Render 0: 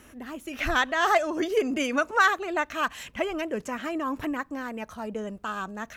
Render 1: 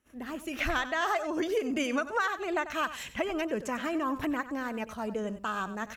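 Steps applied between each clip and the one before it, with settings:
noise gate −50 dBFS, range −25 dB
downward compressor 6 to 1, threshold −26 dBFS, peak gain reduction 10.5 dB
single-tap delay 94 ms −13.5 dB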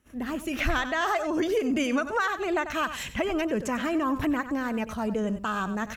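bass and treble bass +6 dB, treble 0 dB
in parallel at −2 dB: brickwall limiter −28 dBFS, peak gain reduction 11.5 dB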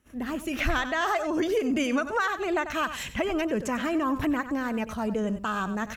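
no processing that can be heard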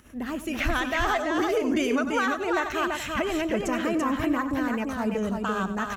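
upward compression, threshold −47 dBFS
on a send: single-tap delay 337 ms −4 dB

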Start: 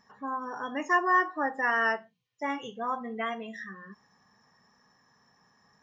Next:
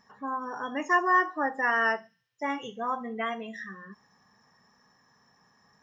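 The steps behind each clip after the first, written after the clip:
delay with a high-pass on its return 72 ms, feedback 50%, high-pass 5,200 Hz, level −15 dB
level +1 dB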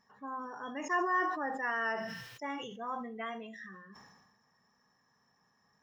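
level that may fall only so fast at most 43 dB per second
level −8.5 dB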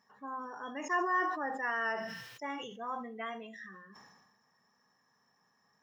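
high-pass filter 180 Hz 6 dB per octave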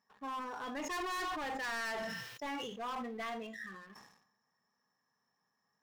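leveller curve on the samples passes 2
hard clipping −31.5 dBFS, distortion −8 dB
level −5 dB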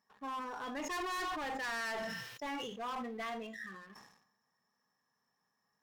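Opus 256 kbit/s 48,000 Hz

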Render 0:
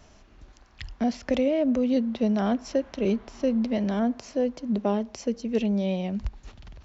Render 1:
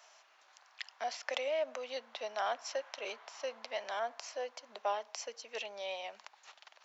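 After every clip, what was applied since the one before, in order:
high-pass filter 720 Hz 24 dB per octave
level −1 dB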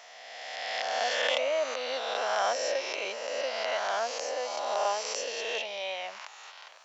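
peak hold with a rise ahead of every peak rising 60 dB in 2.18 s
level +3.5 dB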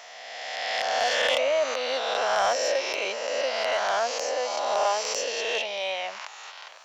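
soft clipping −19.5 dBFS, distortion −22 dB
level +5.5 dB

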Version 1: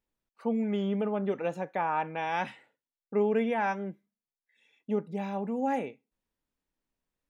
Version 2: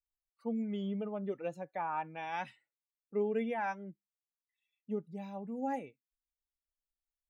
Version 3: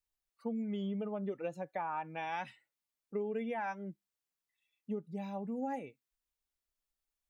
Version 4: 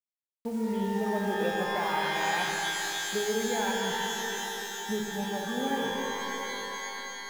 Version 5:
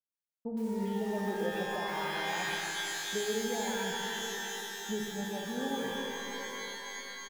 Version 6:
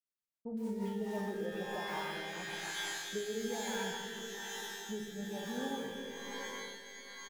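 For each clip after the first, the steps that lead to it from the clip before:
spectral dynamics exaggerated over time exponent 1.5; level −5 dB
downward compressor 4 to 1, threshold −38 dBFS, peak gain reduction 9 dB; level +3.5 dB
hold until the input has moved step −49 dBFS; reverb with rising layers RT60 3.5 s, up +12 semitones, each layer −2 dB, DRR 0 dB; level +4 dB
multiband delay without the direct sound lows, highs 120 ms, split 980 Hz; level −3.5 dB
rotating-speaker cabinet horn 7.5 Hz, later 1.1 Hz, at 0:00.38; level −2.5 dB

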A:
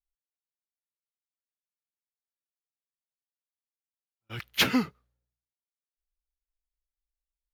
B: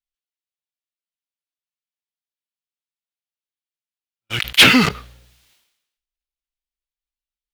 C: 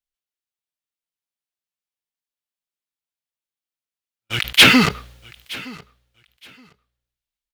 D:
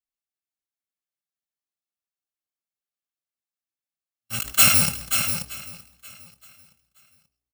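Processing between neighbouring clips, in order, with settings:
parametric band 3,100 Hz +10.5 dB 1.6 octaves; leveller curve on the samples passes 3; level that may fall only so fast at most 64 dB per second; level −1 dB
repeating echo 919 ms, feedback 20%, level −21.5 dB
samples in bit-reversed order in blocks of 128 samples; notch comb filter 480 Hz; multi-tap delay 198/533 ms −20/−7.5 dB; level −4 dB

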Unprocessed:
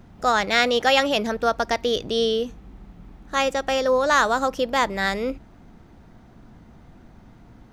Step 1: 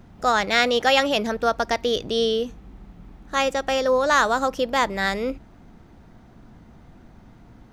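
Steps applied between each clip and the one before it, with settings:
no processing that can be heard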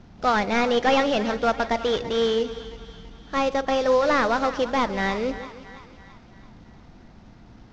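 variable-slope delta modulation 32 kbit/s
echo with a time of its own for lows and highs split 810 Hz, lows 156 ms, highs 334 ms, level −13.5 dB
on a send at −20 dB: convolution reverb RT60 1.2 s, pre-delay 5 ms

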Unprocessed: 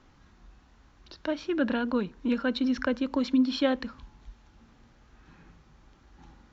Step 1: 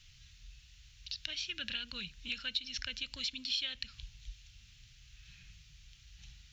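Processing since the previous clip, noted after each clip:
drawn EQ curve 130 Hz 0 dB, 260 Hz −28 dB, 990 Hz −25 dB, 2,700 Hz +10 dB
downward compressor 2.5 to 1, threshold −36 dBFS, peak gain reduction 10.5 dB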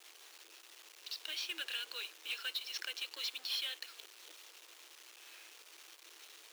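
log-companded quantiser 4 bits
soft clipping −31.5 dBFS, distortion −11 dB
Chebyshev high-pass with heavy ripple 320 Hz, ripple 3 dB
level +2.5 dB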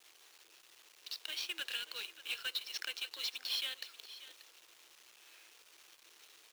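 mu-law and A-law mismatch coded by A
single-tap delay 585 ms −15 dB
level +3.5 dB

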